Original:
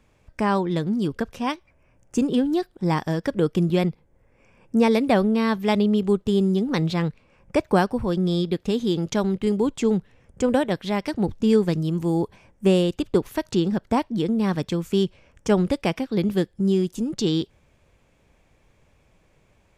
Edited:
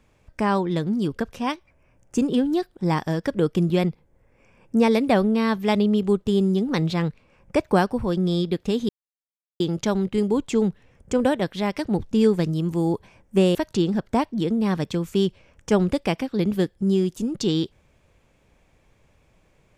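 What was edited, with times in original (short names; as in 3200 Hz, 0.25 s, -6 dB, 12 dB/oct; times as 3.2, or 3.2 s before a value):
8.89 insert silence 0.71 s
12.84–13.33 cut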